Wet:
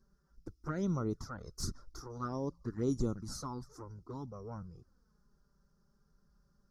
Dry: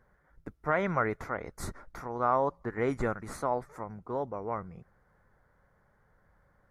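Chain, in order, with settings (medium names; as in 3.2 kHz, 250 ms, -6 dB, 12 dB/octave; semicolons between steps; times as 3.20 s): FFT filter 320 Hz 0 dB, 700 Hz -17 dB, 1.3 kHz -6 dB, 2.2 kHz -26 dB, 5.3 kHz +14 dB, 8.1 kHz -1 dB; touch-sensitive flanger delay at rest 5.3 ms, full sweep at -30 dBFS; trim +1 dB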